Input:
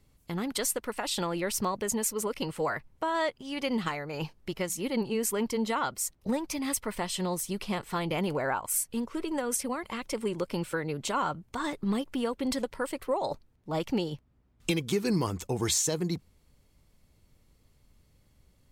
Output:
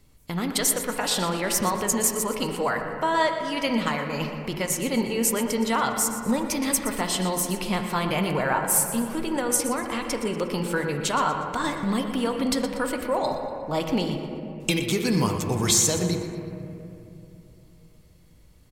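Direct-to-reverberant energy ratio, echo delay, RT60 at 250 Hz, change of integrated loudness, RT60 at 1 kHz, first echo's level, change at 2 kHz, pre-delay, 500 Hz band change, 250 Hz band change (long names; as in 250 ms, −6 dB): 3.5 dB, 120 ms, 3.5 s, +6.5 dB, 2.5 s, −11.5 dB, +7.0 dB, 3 ms, +5.0 dB, +5.5 dB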